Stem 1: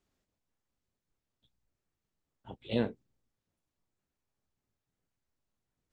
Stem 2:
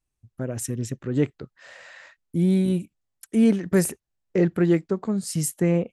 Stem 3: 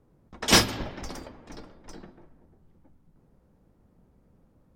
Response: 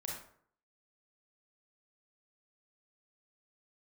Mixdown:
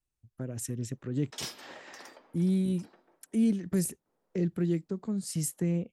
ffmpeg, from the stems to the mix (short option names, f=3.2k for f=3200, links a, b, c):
-filter_complex "[1:a]volume=-6dB[a];[2:a]highpass=460,acompressor=threshold=-27dB:ratio=5,adelay=900,volume=-7.5dB[b];[a][b]amix=inputs=2:normalize=0,acrossover=split=330|3000[c][d][e];[d]acompressor=threshold=-43dB:ratio=6[f];[c][f][e]amix=inputs=3:normalize=0"